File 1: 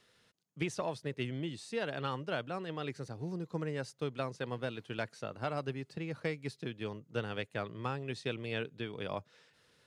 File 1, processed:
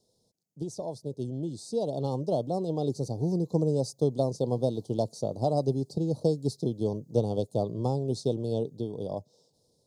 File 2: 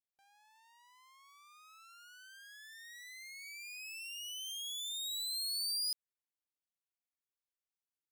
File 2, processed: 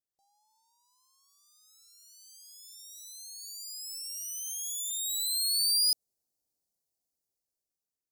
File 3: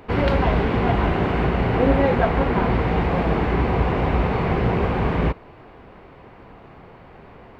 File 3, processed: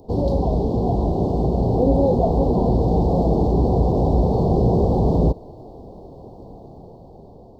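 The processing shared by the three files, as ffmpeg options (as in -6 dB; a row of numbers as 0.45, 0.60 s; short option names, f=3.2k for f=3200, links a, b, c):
-filter_complex "[0:a]dynaudnorm=f=710:g=5:m=11dB,asplit=2[a][b];[b]alimiter=limit=-11dB:level=0:latency=1:release=26,volume=2.5dB[c];[a][c]amix=inputs=2:normalize=0,asuperstop=centerf=1900:order=8:qfactor=0.52,volume=-7dB"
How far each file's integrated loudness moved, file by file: +8.5, +9.5, +1.5 LU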